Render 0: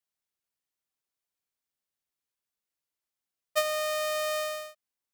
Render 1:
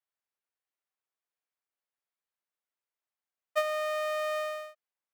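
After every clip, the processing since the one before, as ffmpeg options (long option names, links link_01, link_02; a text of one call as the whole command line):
ffmpeg -i in.wav -filter_complex "[0:a]acrossover=split=380 2700:gain=0.178 1 0.251[link_01][link_02][link_03];[link_01][link_02][link_03]amix=inputs=3:normalize=0" out.wav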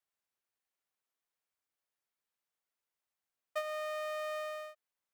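ffmpeg -i in.wav -af "acompressor=threshold=-42dB:ratio=2,volume=1dB" out.wav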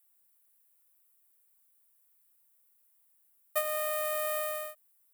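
ffmpeg -i in.wav -af "aexciter=amount=7.5:drive=6.4:freq=8200,volume=4.5dB" out.wav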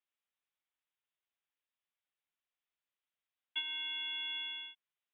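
ffmpeg -i in.wav -af "lowpass=frequency=3400:width_type=q:width=0.5098,lowpass=frequency=3400:width_type=q:width=0.6013,lowpass=frequency=3400:width_type=q:width=0.9,lowpass=frequency=3400:width_type=q:width=2.563,afreqshift=-4000,volume=-6dB" out.wav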